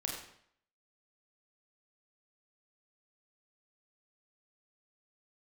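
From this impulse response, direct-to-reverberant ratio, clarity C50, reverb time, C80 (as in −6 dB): −1.5 dB, 2.5 dB, 0.65 s, 5.5 dB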